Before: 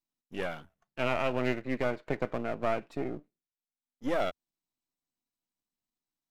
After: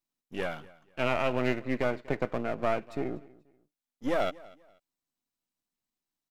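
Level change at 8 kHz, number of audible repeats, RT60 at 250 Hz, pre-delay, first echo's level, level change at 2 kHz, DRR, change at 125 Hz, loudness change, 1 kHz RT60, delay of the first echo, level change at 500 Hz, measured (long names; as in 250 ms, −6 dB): can't be measured, 2, no reverb audible, no reverb audible, −22.0 dB, +1.5 dB, no reverb audible, +1.5 dB, +1.5 dB, no reverb audible, 242 ms, +1.5 dB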